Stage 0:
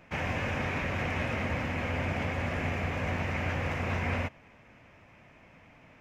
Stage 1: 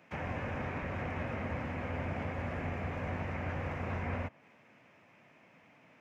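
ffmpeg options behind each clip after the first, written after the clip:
ffmpeg -i in.wav -filter_complex "[0:a]acrossover=split=120|1900[link_01][link_02][link_03];[link_01]aeval=exprs='sgn(val(0))*max(abs(val(0))-0.00141,0)':channel_layout=same[link_04];[link_03]acompressor=threshold=-50dB:ratio=6[link_05];[link_04][link_02][link_05]amix=inputs=3:normalize=0,volume=-4.5dB" out.wav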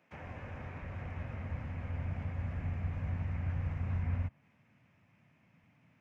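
ffmpeg -i in.wav -af "asubboost=boost=8.5:cutoff=150,volume=-9dB" out.wav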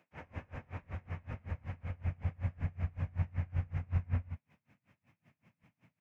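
ffmpeg -i in.wav -filter_complex "[0:a]asplit=2[link_01][link_02];[link_02]aecho=0:1:66|79:0.473|0.224[link_03];[link_01][link_03]amix=inputs=2:normalize=0,aeval=exprs='val(0)*pow(10,-29*(0.5-0.5*cos(2*PI*5.3*n/s))/20)':channel_layout=same,volume=2.5dB" out.wav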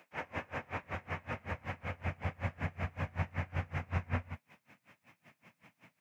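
ffmpeg -i in.wav -af "highpass=frequency=480:poles=1,volume=11.5dB" out.wav

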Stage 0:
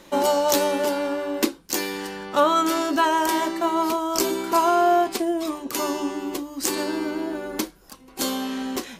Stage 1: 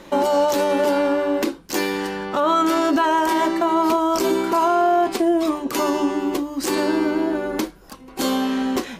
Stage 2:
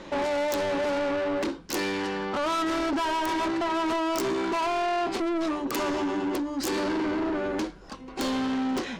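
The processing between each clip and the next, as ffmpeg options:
ffmpeg -i in.wav -af "highshelf=frequency=3600:gain=-8.5,alimiter=limit=-18dB:level=0:latency=1:release=45,volume=7dB" out.wav
ffmpeg -i in.wav -filter_complex "[0:a]acrossover=split=7500[link_01][link_02];[link_01]asoftclip=type=tanh:threshold=-25dB[link_03];[link_02]acrusher=bits=3:mix=0:aa=0.000001[link_04];[link_03][link_04]amix=inputs=2:normalize=0" out.wav

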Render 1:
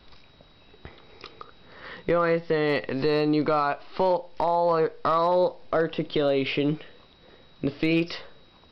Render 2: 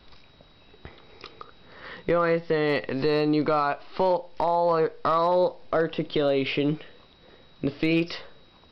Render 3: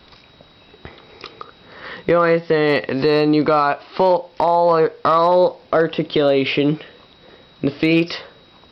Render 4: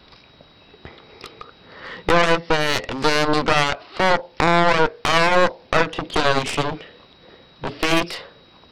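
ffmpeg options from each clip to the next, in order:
ffmpeg -i in.wav -af anull out.wav
ffmpeg -i in.wav -af "highpass=frequency=89:poles=1,volume=8dB" out.wav
ffmpeg -i in.wav -af "aeval=exprs='0.596*(cos(1*acos(clip(val(0)/0.596,-1,1)))-cos(1*PI/2))+0.119*(cos(3*acos(clip(val(0)/0.596,-1,1)))-cos(3*PI/2))+0.188*(cos(4*acos(clip(val(0)/0.596,-1,1)))-cos(4*PI/2))+0.0422*(cos(6*acos(clip(val(0)/0.596,-1,1)))-cos(6*PI/2))+0.106*(cos(7*acos(clip(val(0)/0.596,-1,1)))-cos(7*PI/2))':channel_layout=same" out.wav

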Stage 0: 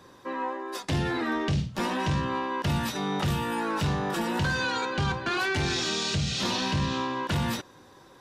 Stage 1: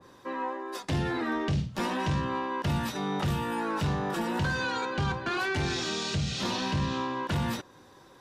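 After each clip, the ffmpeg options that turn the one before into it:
ffmpeg -i in.wav -af "adynamicequalizer=threshold=0.00631:dfrequency=1900:dqfactor=0.7:tfrequency=1900:tqfactor=0.7:attack=5:release=100:ratio=0.375:range=1.5:mode=cutabove:tftype=highshelf,volume=-1.5dB" out.wav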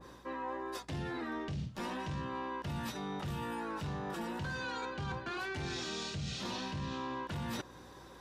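ffmpeg -i in.wav -af "areverse,acompressor=threshold=-38dB:ratio=6,areverse,aeval=exprs='val(0)+0.000794*(sin(2*PI*60*n/s)+sin(2*PI*2*60*n/s)/2+sin(2*PI*3*60*n/s)/3+sin(2*PI*4*60*n/s)/4+sin(2*PI*5*60*n/s)/5)':channel_layout=same,volume=1dB" out.wav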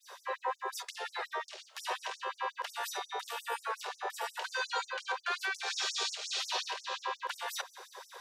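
ffmpeg -i in.wav -af "afftfilt=real='re*gte(b*sr/1024,380*pow(5500/380,0.5+0.5*sin(2*PI*5.6*pts/sr)))':imag='im*gte(b*sr/1024,380*pow(5500/380,0.5+0.5*sin(2*PI*5.6*pts/sr)))':win_size=1024:overlap=0.75,volume=8.5dB" out.wav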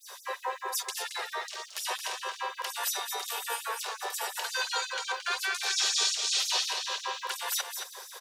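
ffmpeg -i in.wav -filter_complex "[0:a]crystalizer=i=3:c=0,asplit=2[link_01][link_02];[link_02]aecho=0:1:223:0.447[link_03];[link_01][link_03]amix=inputs=2:normalize=0" out.wav

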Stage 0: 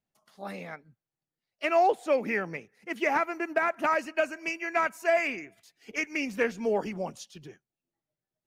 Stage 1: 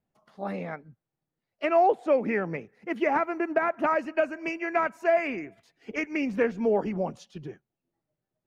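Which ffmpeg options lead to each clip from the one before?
ffmpeg -i in.wav -filter_complex "[0:a]lowpass=frequency=1000:poles=1,asplit=2[link_01][link_02];[link_02]acompressor=threshold=-35dB:ratio=6,volume=0.5dB[link_03];[link_01][link_03]amix=inputs=2:normalize=0,volume=1.5dB" out.wav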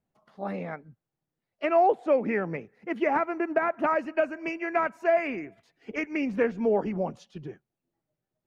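ffmpeg -i in.wav -af "highshelf=frequency=4500:gain=-6.5" out.wav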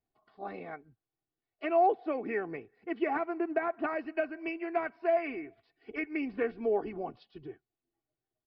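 ffmpeg -i in.wav -af "aecho=1:1:2.7:0.64,aresample=11025,aresample=44100,volume=-7dB" out.wav

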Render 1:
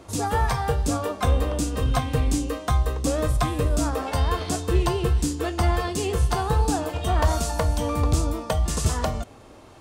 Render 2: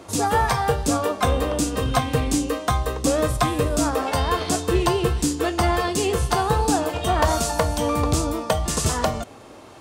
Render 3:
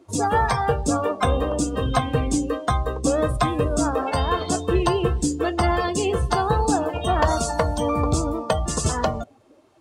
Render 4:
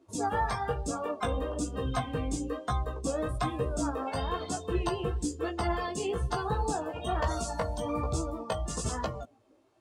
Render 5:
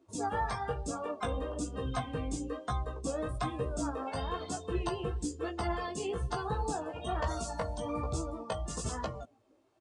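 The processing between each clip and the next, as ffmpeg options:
ffmpeg -i in.wav -af "highpass=frequency=160:poles=1,volume=5dB" out.wav
ffmpeg -i in.wav -af "afftdn=noise_reduction=17:noise_floor=-31" out.wav
ffmpeg -i in.wav -af "flanger=delay=15:depth=4:speed=1.1,volume=-7dB" out.wav
ffmpeg -i in.wav -af "aresample=22050,aresample=44100,volume=-3.5dB" out.wav

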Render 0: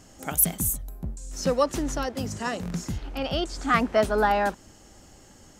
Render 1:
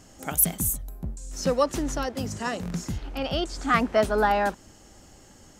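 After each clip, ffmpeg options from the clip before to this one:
ffmpeg -i in.wav -af anull out.wav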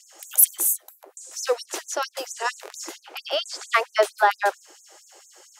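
ffmpeg -i in.wav -af "afftfilt=real='re*gte(b*sr/1024,300*pow(6200/300,0.5+0.5*sin(2*PI*4.4*pts/sr)))':imag='im*gte(b*sr/1024,300*pow(6200/300,0.5+0.5*sin(2*PI*4.4*pts/sr)))':win_size=1024:overlap=0.75,volume=5.5dB" out.wav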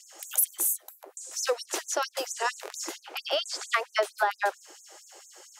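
ffmpeg -i in.wav -af "acompressor=threshold=-23dB:ratio=4" out.wav

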